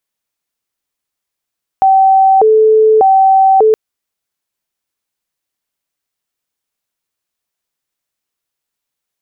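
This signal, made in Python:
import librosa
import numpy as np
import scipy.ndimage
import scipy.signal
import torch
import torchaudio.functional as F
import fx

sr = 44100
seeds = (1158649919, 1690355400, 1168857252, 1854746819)

y = fx.siren(sr, length_s=1.92, kind='hi-lo', low_hz=436.0, high_hz=770.0, per_s=0.84, wave='sine', level_db=-4.5)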